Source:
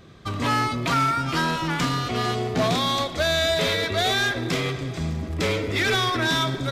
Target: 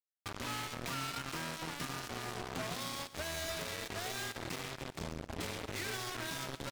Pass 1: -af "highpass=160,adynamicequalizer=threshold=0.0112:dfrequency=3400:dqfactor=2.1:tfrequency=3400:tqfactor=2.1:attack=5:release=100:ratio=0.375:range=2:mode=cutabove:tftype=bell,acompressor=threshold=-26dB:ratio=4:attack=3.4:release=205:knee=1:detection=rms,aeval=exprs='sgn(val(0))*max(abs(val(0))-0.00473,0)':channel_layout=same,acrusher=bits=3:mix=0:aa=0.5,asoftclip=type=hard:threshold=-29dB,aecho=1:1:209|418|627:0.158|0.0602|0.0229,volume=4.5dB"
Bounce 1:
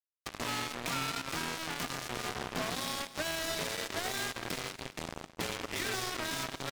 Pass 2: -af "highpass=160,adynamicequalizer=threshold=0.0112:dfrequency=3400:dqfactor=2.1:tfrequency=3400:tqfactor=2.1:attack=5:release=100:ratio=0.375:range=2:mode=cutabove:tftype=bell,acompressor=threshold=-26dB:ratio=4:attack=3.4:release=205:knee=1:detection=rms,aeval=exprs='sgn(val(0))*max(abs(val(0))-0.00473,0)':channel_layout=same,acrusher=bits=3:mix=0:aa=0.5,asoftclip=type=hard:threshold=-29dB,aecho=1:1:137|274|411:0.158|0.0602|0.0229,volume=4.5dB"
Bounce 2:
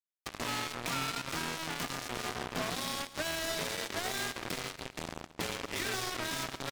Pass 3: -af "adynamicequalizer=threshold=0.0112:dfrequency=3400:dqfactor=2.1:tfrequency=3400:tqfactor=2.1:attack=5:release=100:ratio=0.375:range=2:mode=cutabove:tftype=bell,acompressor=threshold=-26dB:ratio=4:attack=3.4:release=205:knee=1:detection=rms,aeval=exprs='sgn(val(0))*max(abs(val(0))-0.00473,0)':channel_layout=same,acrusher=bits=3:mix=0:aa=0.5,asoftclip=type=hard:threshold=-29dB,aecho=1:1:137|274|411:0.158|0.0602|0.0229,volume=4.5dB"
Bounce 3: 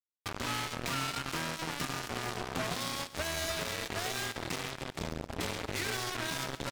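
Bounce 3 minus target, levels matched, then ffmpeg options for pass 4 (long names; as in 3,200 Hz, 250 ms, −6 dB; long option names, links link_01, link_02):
hard clipping: distortion −4 dB
-af "adynamicequalizer=threshold=0.0112:dfrequency=3400:dqfactor=2.1:tfrequency=3400:tqfactor=2.1:attack=5:release=100:ratio=0.375:range=2:mode=cutabove:tftype=bell,acompressor=threshold=-26dB:ratio=4:attack=3.4:release=205:knee=1:detection=rms,aeval=exprs='sgn(val(0))*max(abs(val(0))-0.00473,0)':channel_layout=same,acrusher=bits=3:mix=0:aa=0.5,asoftclip=type=hard:threshold=-35.5dB,aecho=1:1:137|274|411:0.158|0.0602|0.0229,volume=4.5dB"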